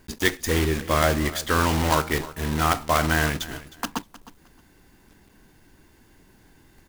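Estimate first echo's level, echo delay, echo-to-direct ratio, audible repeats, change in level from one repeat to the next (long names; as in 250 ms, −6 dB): −17.5 dB, 311 ms, −17.5 dB, 2, −14.0 dB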